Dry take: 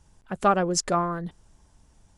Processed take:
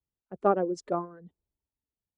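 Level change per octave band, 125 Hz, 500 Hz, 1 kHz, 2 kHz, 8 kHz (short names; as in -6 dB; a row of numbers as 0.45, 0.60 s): -10.0, -1.5, -6.5, -13.5, -23.0 dB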